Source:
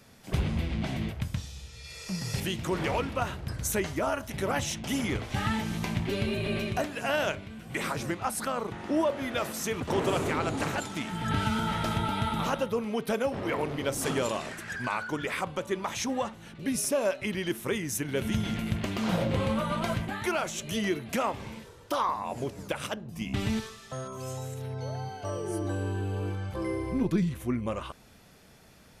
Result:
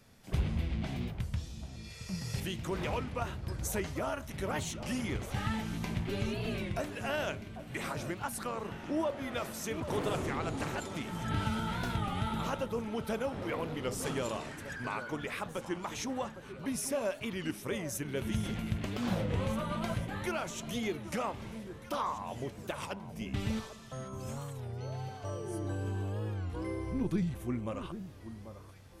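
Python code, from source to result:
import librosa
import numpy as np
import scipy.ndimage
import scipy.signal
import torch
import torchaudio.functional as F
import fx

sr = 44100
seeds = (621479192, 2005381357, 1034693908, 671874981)

y = fx.low_shelf(x, sr, hz=90.0, db=7.5)
y = fx.echo_alternate(y, sr, ms=790, hz=1300.0, feedback_pct=65, wet_db=-11.5)
y = fx.record_warp(y, sr, rpm=33.33, depth_cents=160.0)
y = y * librosa.db_to_amplitude(-6.5)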